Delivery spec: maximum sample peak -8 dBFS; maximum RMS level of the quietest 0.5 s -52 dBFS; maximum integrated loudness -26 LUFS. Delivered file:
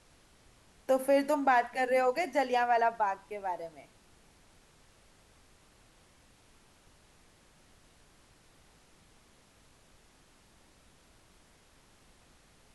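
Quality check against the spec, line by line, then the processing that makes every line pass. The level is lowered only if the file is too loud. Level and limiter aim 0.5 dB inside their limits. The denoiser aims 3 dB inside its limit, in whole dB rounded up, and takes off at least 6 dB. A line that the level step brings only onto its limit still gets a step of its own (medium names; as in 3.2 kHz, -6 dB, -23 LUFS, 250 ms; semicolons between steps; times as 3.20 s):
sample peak -16.0 dBFS: pass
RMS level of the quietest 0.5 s -62 dBFS: pass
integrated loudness -29.5 LUFS: pass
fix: none needed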